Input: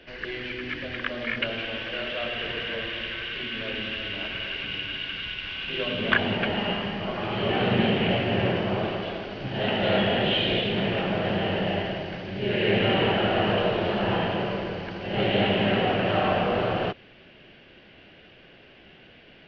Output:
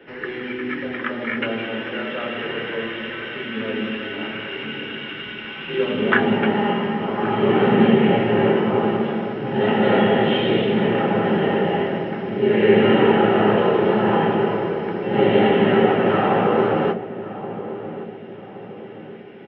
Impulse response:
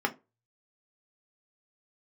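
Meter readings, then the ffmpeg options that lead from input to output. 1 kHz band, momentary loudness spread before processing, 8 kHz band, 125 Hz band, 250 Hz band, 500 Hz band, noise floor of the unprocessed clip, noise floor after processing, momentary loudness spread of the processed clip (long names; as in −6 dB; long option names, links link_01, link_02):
+7.0 dB, 9 LU, can't be measured, +3.5 dB, +9.0 dB, +8.5 dB, −52 dBFS, −36 dBFS, 15 LU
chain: -filter_complex "[0:a]equalizer=frequency=4300:width=0.31:gain=-6,asplit=2[link_01][link_02];[link_02]adelay=1121,lowpass=frequency=900:poles=1,volume=-12dB,asplit=2[link_03][link_04];[link_04]adelay=1121,lowpass=frequency=900:poles=1,volume=0.51,asplit=2[link_05][link_06];[link_06]adelay=1121,lowpass=frequency=900:poles=1,volume=0.51,asplit=2[link_07][link_08];[link_08]adelay=1121,lowpass=frequency=900:poles=1,volume=0.51,asplit=2[link_09][link_10];[link_10]adelay=1121,lowpass=frequency=900:poles=1,volume=0.51[link_11];[link_01][link_03][link_05][link_07][link_09][link_11]amix=inputs=6:normalize=0[link_12];[1:a]atrim=start_sample=2205[link_13];[link_12][link_13]afir=irnorm=-1:irlink=0,volume=-1dB"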